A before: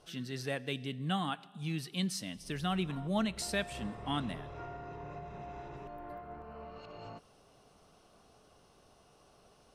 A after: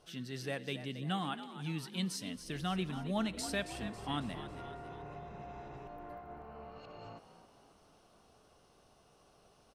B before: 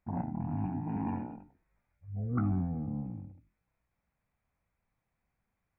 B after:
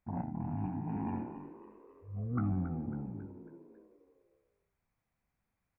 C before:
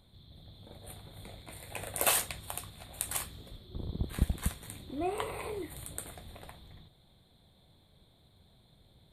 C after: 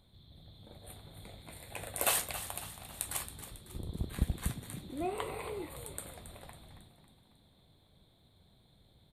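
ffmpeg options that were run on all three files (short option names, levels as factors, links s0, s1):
-filter_complex "[0:a]asplit=6[s0][s1][s2][s3][s4][s5];[s1]adelay=274,afreqshift=60,volume=0.251[s6];[s2]adelay=548,afreqshift=120,volume=0.123[s7];[s3]adelay=822,afreqshift=180,volume=0.0603[s8];[s4]adelay=1096,afreqshift=240,volume=0.0295[s9];[s5]adelay=1370,afreqshift=300,volume=0.0145[s10];[s0][s6][s7][s8][s9][s10]amix=inputs=6:normalize=0,volume=0.75"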